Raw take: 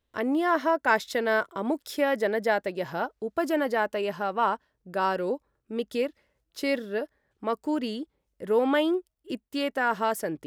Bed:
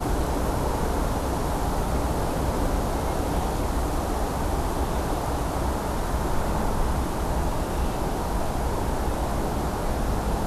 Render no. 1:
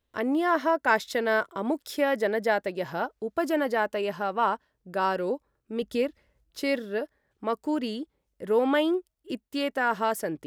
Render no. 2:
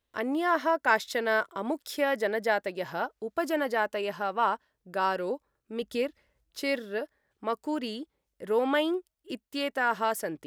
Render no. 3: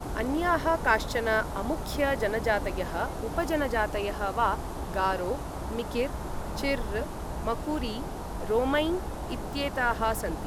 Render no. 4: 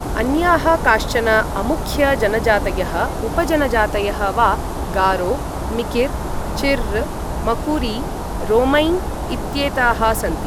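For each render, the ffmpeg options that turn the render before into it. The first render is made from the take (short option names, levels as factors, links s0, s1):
-filter_complex "[0:a]asettb=1/sr,asplit=3[s0][s1][s2];[s0]atrim=end=5.824[s3];[s1]atrim=start=5.82:end=6.61,asetpts=PTS-STARTPTS,afade=t=in:d=0.004:c=qsin,afade=t=out:st=0.786:d=0.004:c=qsin,lowshelf=f=140:g=10.5[s4];[s2]atrim=start=6.606[s5];[s3][s4]acrossfade=d=0.004:c1=hsin:c2=qsin[s6];[s6][s5]acrossfade=d=0.004:c1=qsin:c2=hsin"
-af "lowshelf=f=490:g=-5.5"
-filter_complex "[1:a]volume=0.335[s0];[0:a][s0]amix=inputs=2:normalize=0"
-af "volume=3.55,alimiter=limit=0.891:level=0:latency=1"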